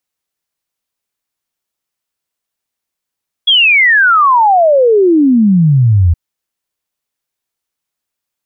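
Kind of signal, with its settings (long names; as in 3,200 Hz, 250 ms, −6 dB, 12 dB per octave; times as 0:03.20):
exponential sine sweep 3,400 Hz → 80 Hz 2.67 s −5 dBFS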